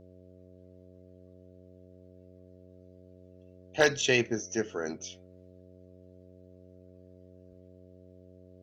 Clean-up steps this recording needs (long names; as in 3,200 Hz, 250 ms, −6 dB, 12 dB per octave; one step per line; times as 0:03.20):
clipped peaks rebuilt −12.5 dBFS
hum removal 91.5 Hz, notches 7